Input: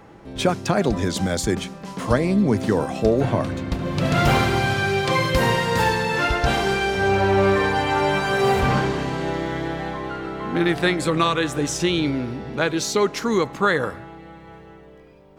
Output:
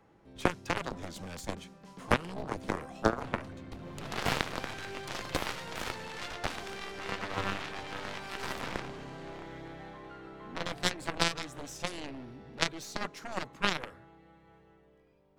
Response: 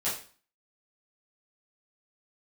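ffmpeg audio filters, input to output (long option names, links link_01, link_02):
-filter_complex "[0:a]aeval=exprs='0.531*(cos(1*acos(clip(val(0)/0.531,-1,1)))-cos(1*PI/2))+0.0531*(cos(2*acos(clip(val(0)/0.531,-1,1)))-cos(2*PI/2))+0.237*(cos(3*acos(clip(val(0)/0.531,-1,1)))-cos(3*PI/2))+0.0211*(cos(5*acos(clip(val(0)/0.531,-1,1)))-cos(5*PI/2))':channel_layout=same,acrossover=split=360[link_01][link_02];[link_02]acompressor=threshold=-21dB:ratio=6[link_03];[link_01][link_03]amix=inputs=2:normalize=0"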